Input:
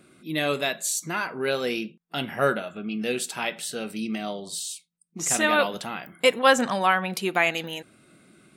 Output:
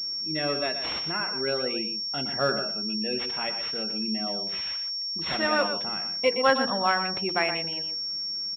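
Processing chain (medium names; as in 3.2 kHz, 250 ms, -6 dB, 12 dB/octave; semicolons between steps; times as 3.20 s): spectral gate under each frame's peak -25 dB strong; hum notches 60/120/180/240/300/360/420/480 Hz; delay 121 ms -8.5 dB; class-D stage that switches slowly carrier 5.5 kHz; trim -3 dB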